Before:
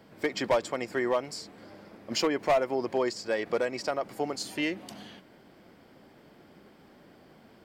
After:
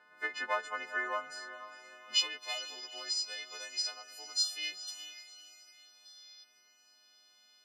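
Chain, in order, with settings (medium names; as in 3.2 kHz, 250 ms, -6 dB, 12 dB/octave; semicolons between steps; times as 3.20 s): partials quantised in pitch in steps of 3 st; time-frequency box 6.05–6.44 s, 3–6.4 kHz +11 dB; band-pass sweep 1.4 kHz -> 4.4 kHz, 1.25–2.57 s; echo that smears into a reverb 465 ms, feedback 40%, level -12 dB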